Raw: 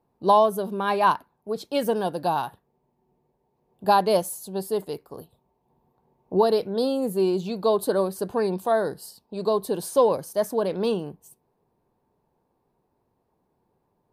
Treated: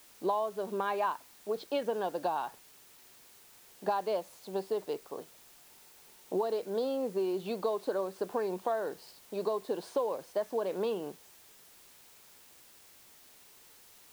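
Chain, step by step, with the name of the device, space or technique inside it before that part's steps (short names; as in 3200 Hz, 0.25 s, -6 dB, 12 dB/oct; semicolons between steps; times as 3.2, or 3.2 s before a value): baby monitor (BPF 330–3200 Hz; compressor, threshold -29 dBFS, peak gain reduction 14.5 dB; white noise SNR 22 dB)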